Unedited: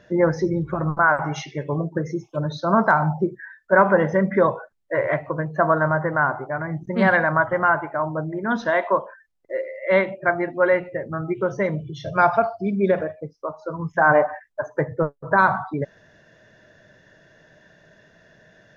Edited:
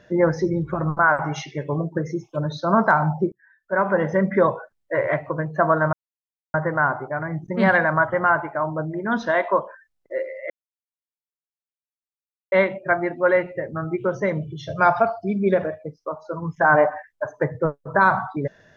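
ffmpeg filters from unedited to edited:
ffmpeg -i in.wav -filter_complex "[0:a]asplit=4[link_01][link_02][link_03][link_04];[link_01]atrim=end=3.32,asetpts=PTS-STARTPTS,afade=type=out:start_time=3.316:duration=0.004:curve=hsin[link_05];[link_02]atrim=start=3.32:end=5.93,asetpts=PTS-STARTPTS,afade=type=in:duration=0.91,afade=type=out:start_time=2.606:duration=0.004:curve=hsin,apad=pad_dur=0.61[link_06];[link_03]atrim=start=5.93:end=9.89,asetpts=PTS-STARTPTS,afade=type=in:duration=0.004:curve=hsin,afade=type=out:start_time=3.956:duration=0.004:curve=hsin,apad=pad_dur=2.02[link_07];[link_04]atrim=start=9.89,asetpts=PTS-STARTPTS,afade=type=in:duration=0.004:curve=hsin[link_08];[link_05][link_06][link_07][link_08]concat=n=4:v=0:a=1" out.wav

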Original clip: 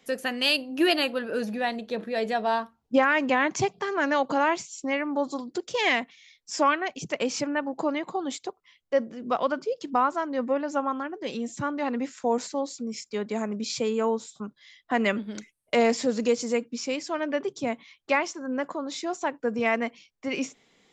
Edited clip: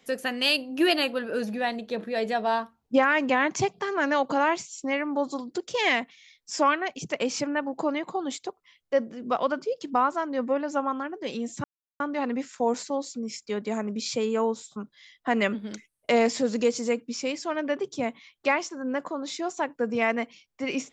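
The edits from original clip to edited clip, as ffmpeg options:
ffmpeg -i in.wav -filter_complex "[0:a]asplit=2[link_01][link_02];[link_01]atrim=end=11.64,asetpts=PTS-STARTPTS,afade=type=out:start_time=11.636:duration=0.004:curve=hsin,apad=pad_dur=0.36[link_03];[link_02]atrim=start=11.64,asetpts=PTS-STARTPTS,afade=type=in:duration=0.004:curve=hsin[link_04];[link_03][link_04]concat=n=2:v=0:a=1" out.wav

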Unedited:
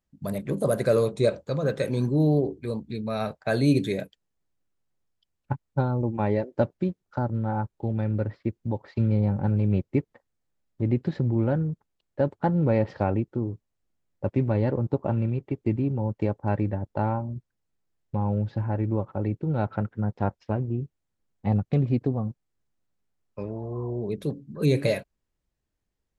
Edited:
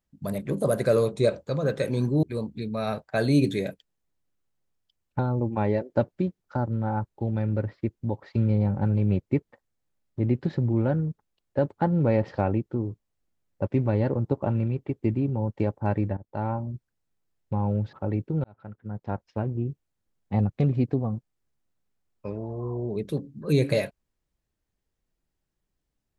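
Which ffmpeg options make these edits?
ffmpeg -i in.wav -filter_complex "[0:a]asplit=6[link_01][link_02][link_03][link_04][link_05][link_06];[link_01]atrim=end=2.232[link_07];[link_02]atrim=start=2.558:end=5.522[link_08];[link_03]atrim=start=5.808:end=16.79,asetpts=PTS-STARTPTS,afade=type=out:start_time=10.978:duration=0.004:curve=hsin:silence=0.149624[link_09];[link_04]atrim=start=16.79:end=18.552,asetpts=PTS-STARTPTS,afade=type=in:duration=0.42:silence=0.149624[link_10];[link_05]atrim=start=19.058:end=19.57,asetpts=PTS-STARTPTS,afade=type=out:start_time=0.508:duration=0.004:curve=hsin[link_11];[link_06]atrim=start=19.57,asetpts=PTS-STARTPTS,afade=type=in:duration=1.16[link_12];[link_07][link_08]acrossfade=duration=0.004:curve1=hsin:curve2=hsin[link_13];[link_09][link_10]concat=n=2:v=0:a=1[link_14];[link_13][link_14]acrossfade=duration=0.004:curve1=hsin:curve2=hsin[link_15];[link_11][link_12]concat=n=2:v=0:a=1[link_16];[link_15][link_16]acrossfade=duration=0.004:curve1=hsin:curve2=hsin" out.wav

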